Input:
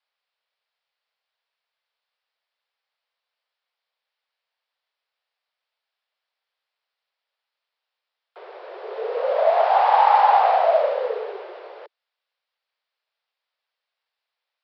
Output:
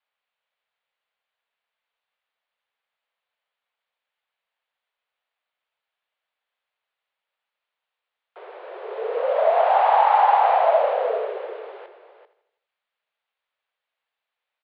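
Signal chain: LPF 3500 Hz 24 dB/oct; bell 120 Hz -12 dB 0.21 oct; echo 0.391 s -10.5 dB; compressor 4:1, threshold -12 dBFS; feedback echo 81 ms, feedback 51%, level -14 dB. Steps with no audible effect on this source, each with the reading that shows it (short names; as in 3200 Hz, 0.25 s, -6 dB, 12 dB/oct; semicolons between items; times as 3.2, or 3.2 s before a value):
bell 120 Hz: input band starts at 360 Hz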